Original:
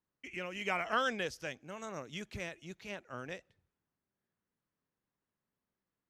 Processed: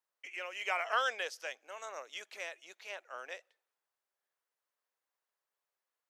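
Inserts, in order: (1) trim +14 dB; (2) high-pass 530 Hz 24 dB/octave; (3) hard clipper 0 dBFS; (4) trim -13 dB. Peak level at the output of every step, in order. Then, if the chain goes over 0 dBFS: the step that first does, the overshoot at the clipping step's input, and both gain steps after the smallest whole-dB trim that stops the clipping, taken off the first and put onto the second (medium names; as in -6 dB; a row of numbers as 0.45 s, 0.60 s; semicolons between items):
-5.5 dBFS, -5.0 dBFS, -5.0 dBFS, -18.0 dBFS; nothing clips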